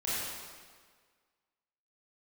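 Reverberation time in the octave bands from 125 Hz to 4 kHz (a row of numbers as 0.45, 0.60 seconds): 1.5, 1.6, 1.7, 1.6, 1.5, 1.4 seconds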